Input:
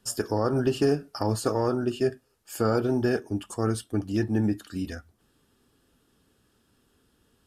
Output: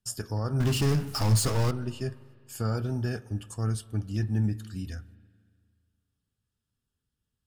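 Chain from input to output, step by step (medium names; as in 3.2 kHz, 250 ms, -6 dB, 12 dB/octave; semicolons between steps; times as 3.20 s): treble shelf 11 kHz -4 dB; 0.60–1.71 s: power-law waveshaper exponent 0.5; gate -54 dBFS, range -15 dB; FFT filter 140 Hz 0 dB, 330 Hz -15 dB, 7.9 kHz -4 dB; spring tank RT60 2 s, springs 37/50 ms, chirp 20 ms, DRR 18 dB; trim +2.5 dB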